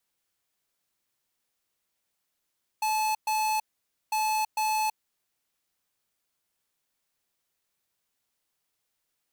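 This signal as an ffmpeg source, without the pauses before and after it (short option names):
-f lavfi -i "aevalsrc='0.0473*(2*lt(mod(865*t,1),0.5)-1)*clip(min(mod(mod(t,1.3),0.45),0.33-mod(mod(t,1.3),0.45))/0.005,0,1)*lt(mod(t,1.3),0.9)':d=2.6:s=44100"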